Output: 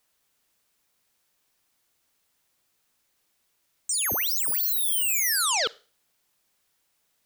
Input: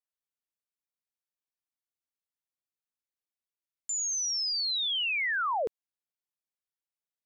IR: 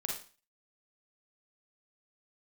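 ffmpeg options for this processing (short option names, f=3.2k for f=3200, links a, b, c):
-filter_complex "[0:a]aeval=exprs='0.0531*sin(PI/2*5.62*val(0)/0.0531)':c=same,asplit=2[a][b];[1:a]atrim=start_sample=2205[c];[b][c]afir=irnorm=-1:irlink=0,volume=-21.5dB[d];[a][d]amix=inputs=2:normalize=0,volume=3dB"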